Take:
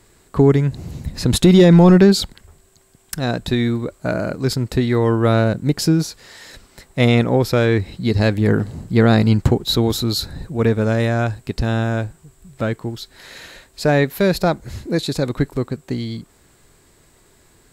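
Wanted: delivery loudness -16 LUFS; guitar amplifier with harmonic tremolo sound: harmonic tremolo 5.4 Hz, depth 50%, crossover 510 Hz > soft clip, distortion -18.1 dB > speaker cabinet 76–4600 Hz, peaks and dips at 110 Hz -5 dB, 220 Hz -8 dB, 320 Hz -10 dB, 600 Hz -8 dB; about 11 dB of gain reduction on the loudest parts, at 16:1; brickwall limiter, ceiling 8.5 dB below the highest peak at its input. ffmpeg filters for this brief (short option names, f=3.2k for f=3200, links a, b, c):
-filter_complex "[0:a]acompressor=threshold=-17dB:ratio=16,alimiter=limit=-16dB:level=0:latency=1,acrossover=split=510[a][b];[a]aeval=exprs='val(0)*(1-0.5/2+0.5/2*cos(2*PI*5.4*n/s))':c=same[c];[b]aeval=exprs='val(0)*(1-0.5/2-0.5/2*cos(2*PI*5.4*n/s))':c=same[d];[c][d]amix=inputs=2:normalize=0,asoftclip=threshold=-19.5dB,highpass=76,equalizer=f=110:t=q:w=4:g=-5,equalizer=f=220:t=q:w=4:g=-8,equalizer=f=320:t=q:w=4:g=-10,equalizer=f=600:t=q:w=4:g=-8,lowpass=f=4.6k:w=0.5412,lowpass=f=4.6k:w=1.3066,volume=18dB"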